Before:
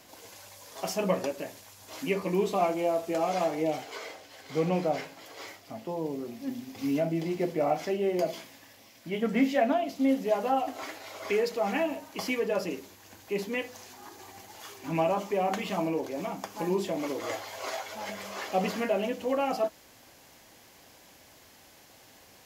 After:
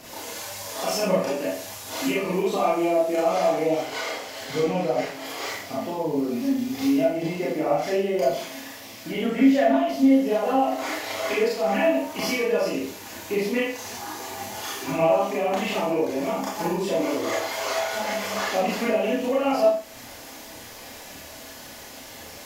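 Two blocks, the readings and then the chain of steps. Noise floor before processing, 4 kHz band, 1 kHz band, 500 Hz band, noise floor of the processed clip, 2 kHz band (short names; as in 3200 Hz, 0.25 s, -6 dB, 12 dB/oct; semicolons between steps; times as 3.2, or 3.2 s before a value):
-56 dBFS, +8.5 dB, +5.5 dB, +6.5 dB, -42 dBFS, +7.5 dB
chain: compressor 2:1, threshold -41 dBFS, peak gain reduction 12 dB; phaser 1.8 Hz, delay 4.4 ms, feedback 39%; Schroeder reverb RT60 0.45 s, combs from 26 ms, DRR -6 dB; gain +6.5 dB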